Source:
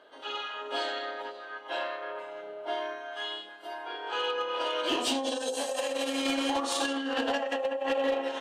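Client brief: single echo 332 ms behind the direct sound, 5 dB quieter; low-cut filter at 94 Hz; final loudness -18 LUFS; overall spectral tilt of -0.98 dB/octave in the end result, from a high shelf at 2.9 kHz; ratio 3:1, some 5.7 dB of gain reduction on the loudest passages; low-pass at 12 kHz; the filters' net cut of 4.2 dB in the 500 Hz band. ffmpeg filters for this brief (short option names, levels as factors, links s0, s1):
-af "highpass=94,lowpass=12000,equalizer=f=500:t=o:g=-4.5,highshelf=f=2900:g=-4.5,acompressor=threshold=0.0178:ratio=3,aecho=1:1:332:0.562,volume=8.91"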